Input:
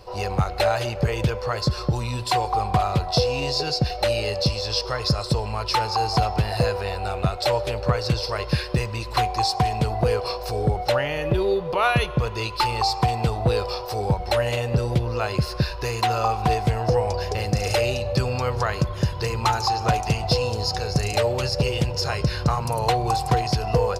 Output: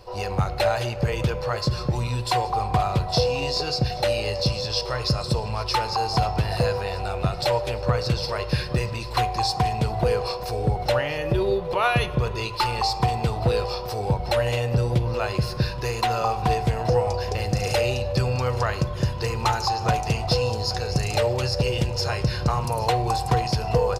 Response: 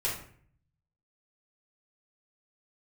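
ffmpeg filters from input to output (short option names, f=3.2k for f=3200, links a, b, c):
-filter_complex "[0:a]aecho=1:1:826|1652|2478|3304:0.119|0.057|0.0274|0.0131,asplit=2[a][b];[1:a]atrim=start_sample=2205[c];[b][c]afir=irnorm=-1:irlink=0,volume=-18dB[d];[a][d]amix=inputs=2:normalize=0,volume=-2dB"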